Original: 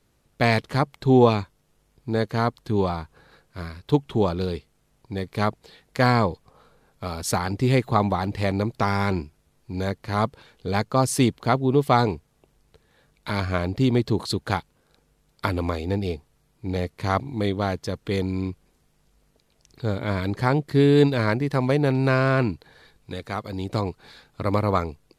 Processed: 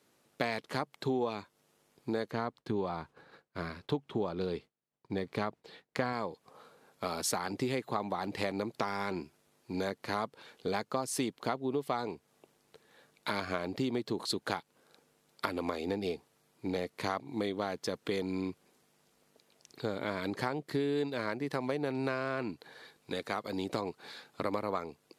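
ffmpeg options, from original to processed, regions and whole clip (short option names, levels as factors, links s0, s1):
-filter_complex "[0:a]asettb=1/sr,asplit=3[s0][s1][s2];[s0]atrim=end=2.314[s3];[s1]atrim=start=2.31:end=6.13,asetpts=PTS-STARTPTS,afade=t=in:d=0.004:c=qsin,afade=t=out:st=3.816:d=0.004:c=qsin,lowpass=f=3500:p=1,agate=range=0.0224:threshold=0.00251:ratio=3:release=100:detection=peak,lowshelf=f=130:g=8[s4];[s2]atrim=start=6.126[s5];[s3][s4]acrossfade=d=0.004:c1=hsin:c2=qsin[s6];[s6][s5]acrossfade=d=0.004:c1=qsin:c2=hsin,highpass=240,acompressor=threshold=0.0316:ratio=6"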